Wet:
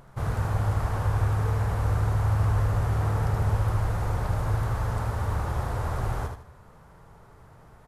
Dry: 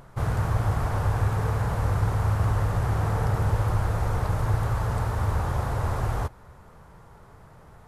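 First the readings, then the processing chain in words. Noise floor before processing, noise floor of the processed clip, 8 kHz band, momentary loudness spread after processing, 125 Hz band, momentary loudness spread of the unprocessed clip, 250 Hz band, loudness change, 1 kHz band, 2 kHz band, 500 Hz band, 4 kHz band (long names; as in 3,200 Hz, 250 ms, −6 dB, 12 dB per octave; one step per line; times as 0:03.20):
−51 dBFS, −52 dBFS, −2.0 dB, 6 LU, −0.5 dB, 3 LU, −2.0 dB, −1.0 dB, −2.0 dB, −2.0 dB, −2.0 dB, −2.0 dB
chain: repeating echo 77 ms, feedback 28%, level −6 dB
level −3 dB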